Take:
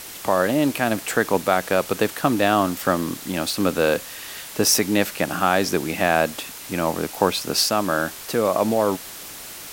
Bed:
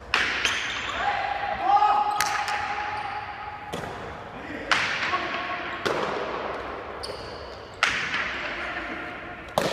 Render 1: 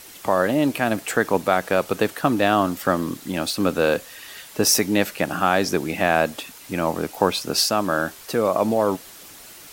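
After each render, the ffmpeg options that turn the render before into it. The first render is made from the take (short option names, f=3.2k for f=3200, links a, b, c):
-af "afftdn=nr=7:nf=-37"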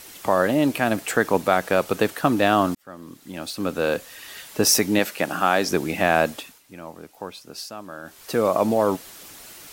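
-filter_complex "[0:a]asettb=1/sr,asplit=3[a][b][c];[a]atrim=end=4.994[d];[b]atrim=start=4.99:end=5.71,asetpts=PTS-STARTPTS,afade=t=in:d=0.004:c=qsin,afade=t=out:st=0.716:d=0.004:c=qsin,highpass=f=230:p=1[e];[c]atrim=start=5.706[f];[d][e]acrossfade=d=0.004:c1=hsin:c2=qsin[g];[g][f]acrossfade=d=0.004:c1=qsin:c2=hsin,asplit=4[h][i][j][k];[h]atrim=end=2.75,asetpts=PTS-STARTPTS,afade=t=out:st=2.746:d=0.004:c=hsin[l];[i]atrim=start=2.75:end=6.63,asetpts=PTS-STARTPTS,afade=t=in:d=1.63,afade=t=out:st=3.54:d=0.34:silence=0.16788[m];[j]atrim=start=6.63:end=8.03,asetpts=PTS-STARTPTS,volume=-15.5dB[n];[k]atrim=start=8.03,asetpts=PTS-STARTPTS,afade=t=in:d=0.34:silence=0.16788[o];[l][m][n][o]concat=n=4:v=0:a=1"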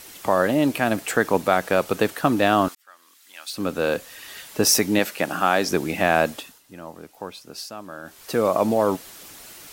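-filter_complex "[0:a]asettb=1/sr,asplit=3[a][b][c];[a]atrim=end=2.684[d];[b]atrim=start=2.68:end=3.53,asetpts=PTS-STARTPTS,afade=t=in:d=0.004:c=qsin,afade=t=out:st=0.846:d=0.004:c=qsin,highpass=1.5k[e];[c]atrim=start=3.526[f];[d][e]acrossfade=d=0.004:c1=hsin:c2=qsin[g];[g][f]acrossfade=d=0.004:c1=qsin:c2=hsin,asettb=1/sr,asplit=3[h][i][j];[h]atrim=end=6.404[k];[i]atrim=start=6.4:end=6.94,asetpts=PTS-STARTPTS,afade=t=in:d=0.004:c=qsin,afade=t=out:st=0.536:d=0.004:c=qsin,bandreject=f=2.3k:w=6.8[l];[j]atrim=start=6.936[m];[k][l]acrossfade=d=0.004:c1=hsin:c2=qsin[n];[n][m]acrossfade=d=0.004:c1=qsin:c2=hsin"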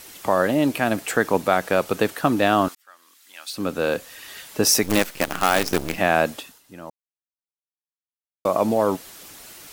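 -filter_complex "[0:a]asettb=1/sr,asplit=3[a][b][c];[a]atrim=end=4.834[d];[b]atrim=start=4.83:end=5.98,asetpts=PTS-STARTPTS,afade=t=in:d=0.004:c=qsin,afade=t=out:st=1.146:d=0.004:c=qsin,acrusher=bits=4:dc=4:mix=0:aa=0.000001[e];[c]atrim=start=5.976[f];[d][e]acrossfade=d=0.004:c1=hsin:c2=qsin[g];[g][f]acrossfade=d=0.004:c1=qsin:c2=hsin,asplit=3[h][i][j];[h]atrim=end=6.9,asetpts=PTS-STARTPTS,afade=t=out:st=6.896:d=0.004:c=hsin[k];[i]atrim=start=6.9:end=8.45,asetpts=PTS-STARTPTS,volume=0[l];[j]atrim=start=8.45,asetpts=PTS-STARTPTS,afade=t=in:d=0.004:c=hsin[m];[k][l][m]concat=n=3:v=0:a=1"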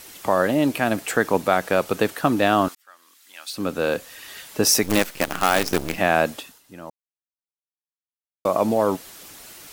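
-af anull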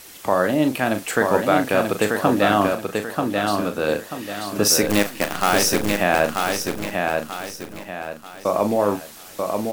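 -filter_complex "[0:a]asplit=2[a][b];[b]adelay=39,volume=-9dB[c];[a][c]amix=inputs=2:normalize=0,aecho=1:1:937|1874|2811|3748|4685:0.631|0.233|0.0864|0.032|0.0118"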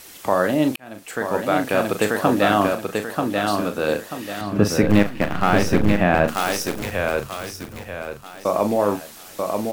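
-filter_complex "[0:a]asettb=1/sr,asplit=3[a][b][c];[a]atrim=end=4.414[d];[b]atrim=start=4.41:end=6.28,asetpts=PTS-STARTPTS,afade=t=in:d=0.004:c=qsin,afade=t=out:st=1.866:d=0.004:c=qsin,bass=f=250:g=10,treble=f=4k:g=-15[e];[c]atrim=start=6.276[f];[d][e]acrossfade=d=0.004:c1=hsin:c2=qsin[g];[g][f]acrossfade=d=0.004:c1=qsin:c2=hsin,asettb=1/sr,asplit=3[h][i][j];[h]atrim=end=6.824[k];[i]atrim=start=6.82:end=8.23,asetpts=PTS-STARTPTS,afade=t=in:d=0.004:c=qsin,afade=t=out:st=1.406:d=0.004:c=qsin,afreqshift=-95[l];[j]atrim=start=8.226[m];[k][l]acrossfade=d=0.004:c1=hsin:c2=qsin[n];[n][m]acrossfade=d=0.004:c1=qsin:c2=hsin,asplit=2[o][p];[o]atrim=end=0.76,asetpts=PTS-STARTPTS,afade=t=out:st=0.756:d=0.004:c=hsin[q];[p]atrim=start=0.76,asetpts=PTS-STARTPTS,afade=t=in:d=1.38:c=qsin[r];[q][r]concat=n=2:v=0:a=1"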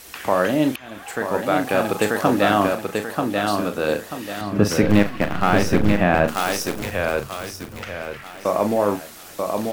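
-filter_complex "[1:a]volume=-14dB[a];[0:a][a]amix=inputs=2:normalize=0"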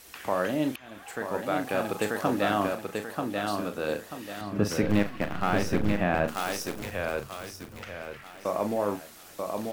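-af "volume=-8.5dB"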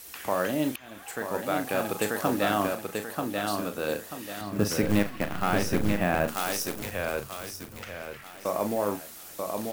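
-af "acrusher=bits=7:mode=log:mix=0:aa=0.000001,crystalizer=i=1:c=0"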